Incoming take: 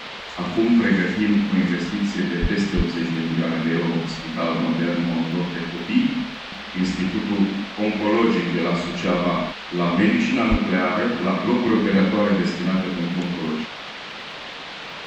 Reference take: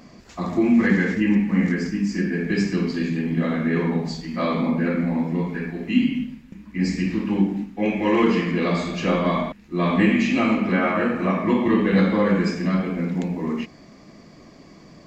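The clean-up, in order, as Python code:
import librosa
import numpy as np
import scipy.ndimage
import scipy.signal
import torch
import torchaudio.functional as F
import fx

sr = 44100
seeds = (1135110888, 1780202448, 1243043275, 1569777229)

y = fx.fix_declick_ar(x, sr, threshold=6.5)
y = fx.highpass(y, sr, hz=140.0, slope=24, at=(2.41, 2.53), fade=0.02)
y = fx.highpass(y, sr, hz=140.0, slope=24, at=(2.76, 2.88), fade=0.02)
y = fx.highpass(y, sr, hz=140.0, slope=24, at=(10.5, 10.62), fade=0.02)
y = fx.noise_reduce(y, sr, print_start_s=14.32, print_end_s=14.82, reduce_db=11.0)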